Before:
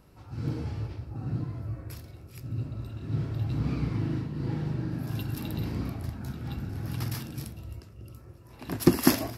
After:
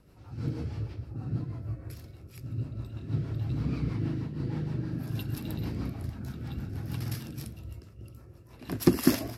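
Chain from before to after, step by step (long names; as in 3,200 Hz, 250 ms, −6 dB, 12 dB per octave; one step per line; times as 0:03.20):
rotating-speaker cabinet horn 6.3 Hz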